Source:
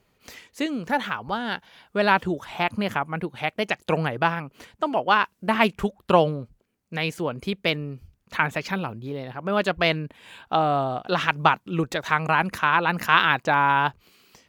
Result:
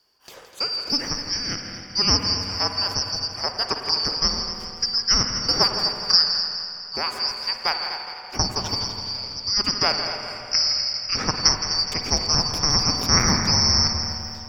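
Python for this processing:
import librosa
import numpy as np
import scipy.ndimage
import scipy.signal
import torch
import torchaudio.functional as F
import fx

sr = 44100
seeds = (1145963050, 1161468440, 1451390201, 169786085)

y = fx.band_shuffle(x, sr, order='2341')
y = fx.high_shelf(y, sr, hz=7800.0, db=-10.0, at=(10.71, 11.32))
y = fx.echo_heads(y, sr, ms=83, heads='second and third', feedback_pct=51, wet_db=-11)
y = fx.rev_spring(y, sr, rt60_s=2.6, pass_ms=(48, 52), chirp_ms=40, drr_db=5.0)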